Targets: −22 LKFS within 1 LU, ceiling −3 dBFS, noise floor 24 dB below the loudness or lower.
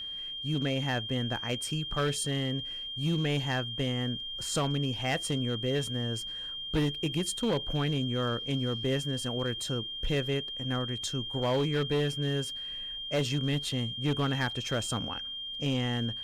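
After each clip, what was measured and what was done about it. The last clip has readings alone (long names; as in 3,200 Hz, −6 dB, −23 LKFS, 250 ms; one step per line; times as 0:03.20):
share of clipped samples 1.8%; peaks flattened at −23.0 dBFS; interfering tone 3,200 Hz; level of the tone −36 dBFS; integrated loudness −31.0 LKFS; sample peak −23.0 dBFS; target loudness −22.0 LKFS
→ clipped peaks rebuilt −23 dBFS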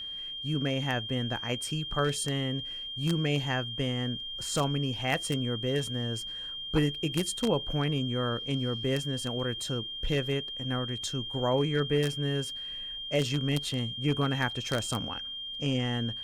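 share of clipped samples 0.0%; interfering tone 3,200 Hz; level of the tone −36 dBFS
→ notch filter 3,200 Hz, Q 30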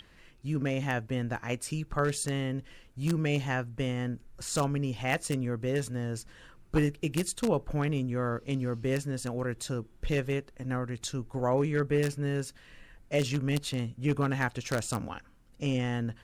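interfering tone none found; integrated loudness −31.5 LKFS; sample peak −13.5 dBFS; target loudness −22.0 LKFS
→ level +9.5 dB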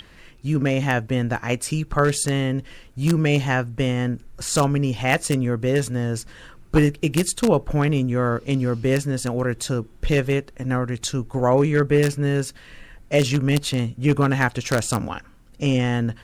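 integrated loudness −22.0 LKFS; sample peak −4.0 dBFS; background noise floor −48 dBFS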